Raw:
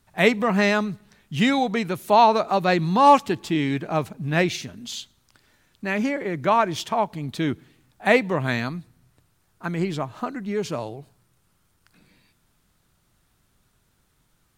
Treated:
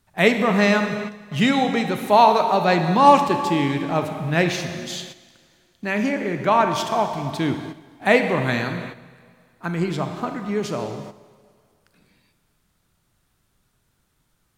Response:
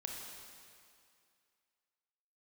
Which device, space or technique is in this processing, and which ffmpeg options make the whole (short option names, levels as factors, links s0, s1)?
keyed gated reverb: -filter_complex "[0:a]asplit=3[s0][s1][s2];[1:a]atrim=start_sample=2205[s3];[s1][s3]afir=irnorm=-1:irlink=0[s4];[s2]apad=whole_len=642769[s5];[s4][s5]sidechaingate=range=0.355:threshold=0.00447:ratio=16:detection=peak,volume=1.5[s6];[s0][s6]amix=inputs=2:normalize=0,volume=0.596"